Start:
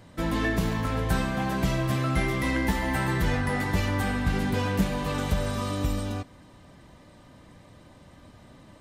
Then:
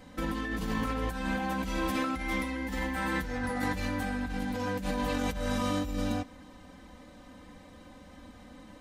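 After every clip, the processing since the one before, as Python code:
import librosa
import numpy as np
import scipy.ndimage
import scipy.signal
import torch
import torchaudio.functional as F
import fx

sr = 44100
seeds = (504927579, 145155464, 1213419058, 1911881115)

y = x + 0.96 * np.pad(x, (int(3.9 * sr / 1000.0), 0))[:len(x)]
y = fx.over_compress(y, sr, threshold_db=-27.0, ratio=-1.0)
y = y * librosa.db_to_amplitude(-5.0)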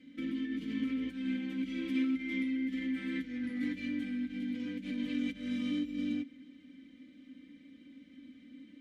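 y = fx.vowel_filter(x, sr, vowel='i')
y = fx.high_shelf(y, sr, hz=8500.0, db=6.0)
y = y * librosa.db_to_amplitude(5.0)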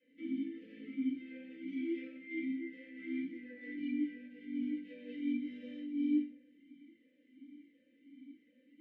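y = fx.room_shoebox(x, sr, seeds[0], volume_m3=360.0, walls='furnished', distance_m=5.2)
y = fx.vowel_sweep(y, sr, vowels='e-i', hz=1.4)
y = y * librosa.db_to_amplitude(-6.5)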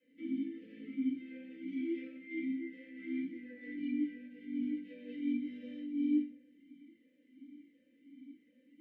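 y = fx.peak_eq(x, sr, hz=140.0, db=4.0, octaves=2.3)
y = y * librosa.db_to_amplitude(-1.5)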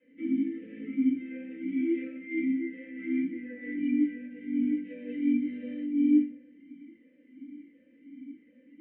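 y = scipy.signal.sosfilt(scipy.signal.butter(4, 2500.0, 'lowpass', fs=sr, output='sos'), x)
y = y * librosa.db_to_amplitude(8.5)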